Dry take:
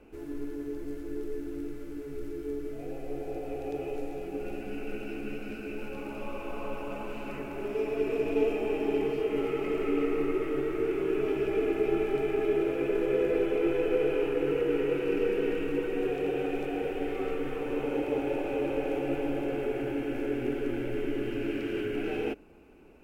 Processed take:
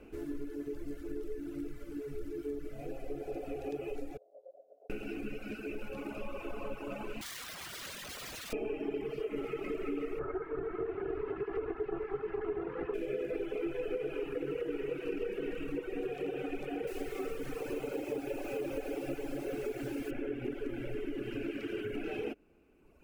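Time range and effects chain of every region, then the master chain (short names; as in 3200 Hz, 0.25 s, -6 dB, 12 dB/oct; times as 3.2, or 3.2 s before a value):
4.17–4.9 tube stage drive 28 dB, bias 0.75 + Butterworth band-pass 590 Hz, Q 3.6
7.21–8.53 compressor, threshold -30 dBFS + wrapped overs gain 38 dB
10.19–12.94 minimum comb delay 2.3 ms + synth low-pass 1400 Hz, resonance Q 1.7 + notch 620 Hz, Q 5.1
16.87–20.11 de-hum 71.99 Hz, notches 4 + requantised 8-bit, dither none
whole clip: reverb removal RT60 1.7 s; bell 880 Hz -5 dB 0.38 oct; compressor 3:1, threshold -37 dBFS; gain +2 dB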